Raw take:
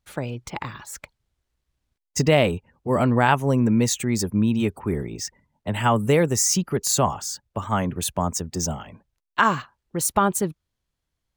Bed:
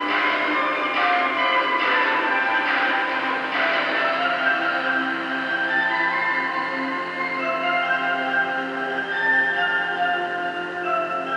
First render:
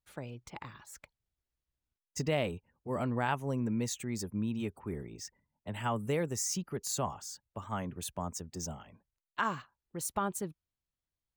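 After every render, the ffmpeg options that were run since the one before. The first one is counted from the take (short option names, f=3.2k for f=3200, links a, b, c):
-af "volume=-13.5dB"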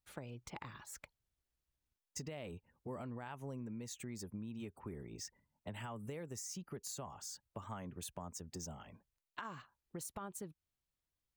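-af "alimiter=level_in=1dB:limit=-24dB:level=0:latency=1:release=103,volume=-1dB,acompressor=threshold=-43dB:ratio=6"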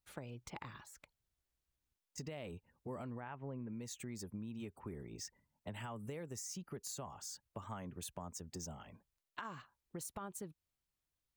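-filter_complex "[0:a]asettb=1/sr,asplit=3[a][b][c];[a]atrim=end=0.804[d];[b]atrim=start=0.8:end=2.18,asetpts=PTS-STARTPTS,afade=t=in:d=0.004:c=qsin,afade=t=out:st=1.376:d=0.004:c=qsin,acompressor=threshold=-54dB:ratio=5:attack=3.2:release=140:knee=1:detection=peak[e];[c]atrim=start=2.176[f];[d][e]acrossfade=d=0.004:c1=hsin:c2=qsin[g];[g][f]acrossfade=d=0.004:c1=qsin:c2=hsin,asettb=1/sr,asplit=3[h][i][j];[h]atrim=end=3.204[k];[i]atrim=start=3.2:end=3.73,asetpts=PTS-STARTPTS,afade=t=in:d=0.004:c=qsin,afade=t=out:st=0.526:d=0.004:c=qsin,lowpass=f=2.6k:w=0.5412,lowpass=f=2.6k:w=1.3066[l];[j]atrim=start=3.726[m];[k][l]acrossfade=d=0.004:c1=hsin:c2=qsin[n];[n][m]acrossfade=d=0.004:c1=qsin:c2=hsin"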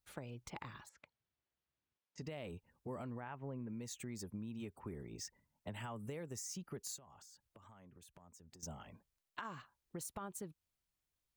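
-filter_complex "[0:a]asettb=1/sr,asplit=3[a][b][c];[a]atrim=end=0.894[d];[b]atrim=start=0.89:end=2.22,asetpts=PTS-STARTPTS,afade=t=in:d=0.004:c=qsin,afade=t=out:st=1.326:d=0.004:c=qsin,highpass=110,lowpass=3.7k[e];[c]atrim=start=2.216[f];[d][e]acrossfade=d=0.004:c1=hsin:c2=qsin[g];[g][f]acrossfade=d=0.004:c1=qsin:c2=hsin,asettb=1/sr,asplit=3[h][i][j];[h]atrim=end=6.964[k];[i]atrim=start=6.96:end=8.63,asetpts=PTS-STARTPTS,afade=t=in:d=0.004:c=qsin,afade=t=out:st=1.666:d=0.004:c=qsin,acompressor=threshold=-57dB:ratio=10:attack=3.2:release=140:knee=1:detection=peak[l];[j]atrim=start=8.626[m];[k][l]acrossfade=d=0.004:c1=hsin:c2=qsin[n];[n][m]acrossfade=d=0.004:c1=qsin:c2=hsin"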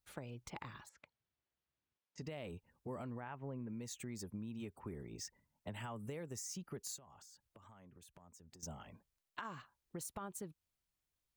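-af anull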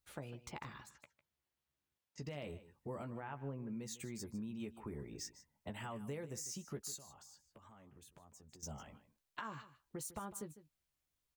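-filter_complex "[0:a]asplit=2[a][b];[b]adelay=14,volume=-8dB[c];[a][c]amix=inputs=2:normalize=0,aecho=1:1:152:0.168"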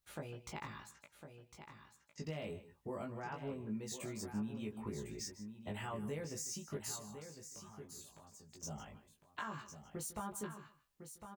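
-filter_complex "[0:a]asplit=2[a][b];[b]adelay=19,volume=-2.5dB[c];[a][c]amix=inputs=2:normalize=0,aecho=1:1:1055:0.335"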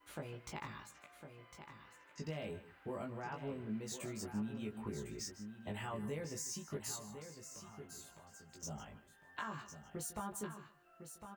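-filter_complex "[1:a]volume=-44dB[a];[0:a][a]amix=inputs=2:normalize=0"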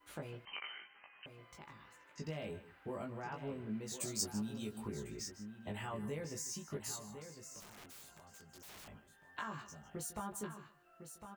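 -filter_complex "[0:a]asettb=1/sr,asplit=3[a][b][c];[a]atrim=end=0.454[d];[b]atrim=start=0.45:end=1.26,asetpts=PTS-STARTPTS,afade=t=in:d=0.004:c=qsin,afade=t=out:st=0.806:d=0.004:c=qsin,lowpass=f=2.7k:t=q:w=0.5098,lowpass=f=2.7k:t=q:w=0.6013,lowpass=f=2.7k:t=q:w=0.9,lowpass=f=2.7k:t=q:w=2.563,afreqshift=-3200[e];[c]atrim=start=1.256[f];[d][e]acrossfade=d=0.004:c1=hsin:c2=qsin[g];[g][f]acrossfade=d=0.004:c1=qsin:c2=hsin,asplit=3[h][i][j];[h]afade=t=out:st=4:d=0.02[k];[i]highshelf=f=3.3k:t=q:w=1.5:g=11,afade=t=in:st=4:d=0.02,afade=t=out:st=4.86:d=0.02[l];[j]afade=t=in:st=4.86:d=0.02[m];[k][l][m]amix=inputs=3:normalize=0,asettb=1/sr,asplit=3[n][o][p];[n]atrim=end=7.604[q];[o]atrim=start=7.6:end=8.88,asetpts=PTS-STARTPTS,afade=t=in:d=0.004:c=qsin,afade=t=out:st=1.276:d=0.004:c=qsin,aeval=exprs='(mod(299*val(0)+1,2)-1)/299':c=same[r];[p]atrim=start=8.876[s];[q][r]acrossfade=d=0.004:c1=hsin:c2=qsin[t];[t][s]acrossfade=d=0.004:c1=qsin:c2=hsin"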